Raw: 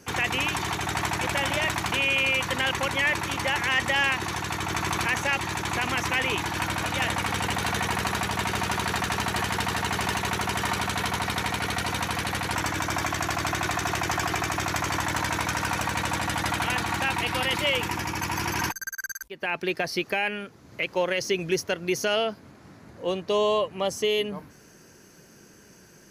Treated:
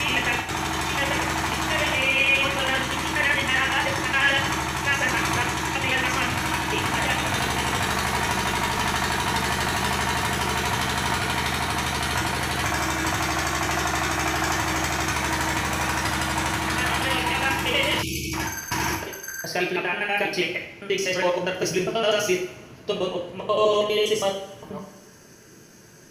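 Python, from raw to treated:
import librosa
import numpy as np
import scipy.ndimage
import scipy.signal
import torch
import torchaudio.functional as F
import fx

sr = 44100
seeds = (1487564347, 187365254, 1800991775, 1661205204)

y = fx.block_reorder(x, sr, ms=81.0, group=6)
y = fx.rev_double_slope(y, sr, seeds[0], early_s=0.6, late_s=1.9, knee_db=-18, drr_db=-0.5)
y = fx.spec_erase(y, sr, start_s=18.02, length_s=0.32, low_hz=490.0, high_hz=2200.0)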